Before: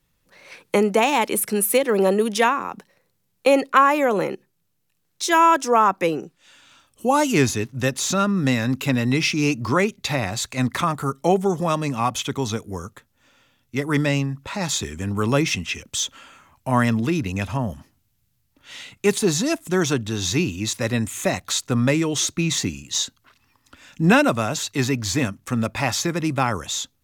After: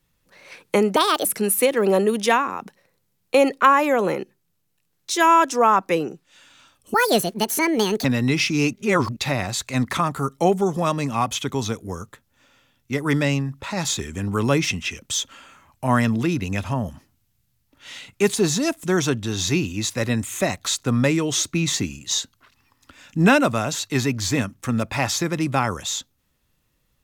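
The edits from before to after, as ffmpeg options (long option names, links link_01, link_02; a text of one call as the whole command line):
ffmpeg -i in.wav -filter_complex "[0:a]asplit=7[link_01][link_02][link_03][link_04][link_05][link_06][link_07];[link_01]atrim=end=0.964[link_08];[link_02]atrim=start=0.96:end=1.37,asetpts=PTS-STARTPTS,asetrate=62181,aresample=44100,atrim=end_sample=12823,asetpts=PTS-STARTPTS[link_09];[link_03]atrim=start=1.366:end=7.064[link_10];[link_04]atrim=start=7.06:end=8.88,asetpts=PTS-STARTPTS,asetrate=72765,aresample=44100[link_11];[link_05]atrim=start=8.876:end=9.572[link_12];[link_06]atrim=start=9.568:end=10.002,asetpts=PTS-STARTPTS,areverse[link_13];[link_07]atrim=start=9.998[link_14];[link_08][link_09]acrossfade=duration=0.004:curve1=hsin:curve2=hsin[link_15];[link_15][link_10]acrossfade=duration=0.004:curve1=hsin:curve2=hsin[link_16];[link_16][link_11]acrossfade=duration=0.004:curve1=hsin:curve2=hsin[link_17];[link_17][link_12]acrossfade=duration=0.004:curve1=hsin:curve2=hsin[link_18];[link_18][link_13]acrossfade=duration=0.004:curve1=hsin:curve2=hsin[link_19];[link_19][link_14]acrossfade=duration=0.004:curve1=hsin:curve2=hsin" out.wav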